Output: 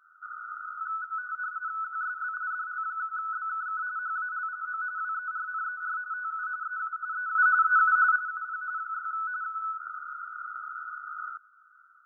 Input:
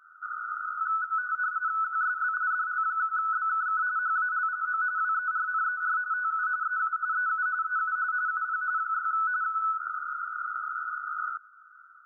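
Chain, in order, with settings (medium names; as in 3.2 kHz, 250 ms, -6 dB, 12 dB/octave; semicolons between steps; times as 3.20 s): 7.35–8.16 s: peaking EQ 1.4 kHz +12 dB 2.1 oct; trim -5 dB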